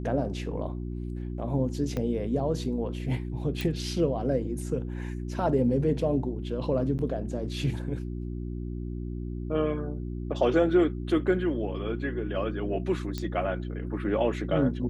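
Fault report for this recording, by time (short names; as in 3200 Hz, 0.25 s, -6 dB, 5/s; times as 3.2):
hum 60 Hz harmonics 6 -34 dBFS
1.97 pop -19 dBFS
3.61 pop
6.98–6.99 gap 9.8 ms
13.18 pop -18 dBFS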